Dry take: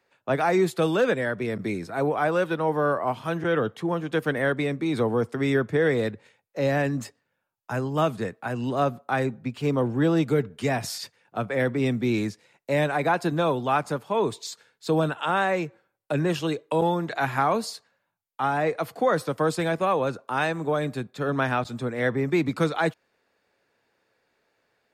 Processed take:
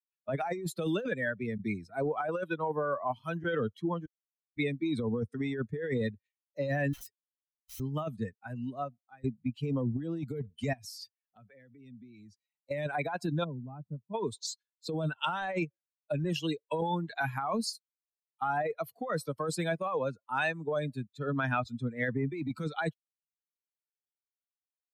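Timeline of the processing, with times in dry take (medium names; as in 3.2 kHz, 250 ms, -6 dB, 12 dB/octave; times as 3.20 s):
4.06–4.57 s: mute
6.93–7.80 s: integer overflow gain 34 dB
8.31–9.24 s: fade out, to -18.5 dB
10.73–12.71 s: compression, threshold -36 dBFS
13.44–14.14 s: band-pass filter 140 Hz, Q 0.75
15.24–15.65 s: waveshaping leveller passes 1
17.73–18.42 s: differentiator
whole clip: expander on every frequency bin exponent 2; treble shelf 8.8 kHz -3 dB; compressor with a negative ratio -31 dBFS, ratio -1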